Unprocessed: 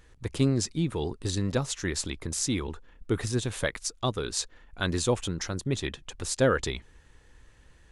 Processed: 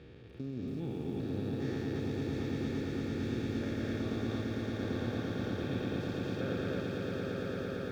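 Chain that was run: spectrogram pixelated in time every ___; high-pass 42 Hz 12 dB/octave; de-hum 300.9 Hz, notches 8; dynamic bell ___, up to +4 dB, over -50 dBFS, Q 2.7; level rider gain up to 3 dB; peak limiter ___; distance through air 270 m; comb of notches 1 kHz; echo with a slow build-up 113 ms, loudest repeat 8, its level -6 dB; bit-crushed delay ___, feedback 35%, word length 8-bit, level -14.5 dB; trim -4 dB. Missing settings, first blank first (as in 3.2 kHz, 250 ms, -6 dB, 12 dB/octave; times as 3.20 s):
400 ms, 240 Hz, -25.5 dBFS, 280 ms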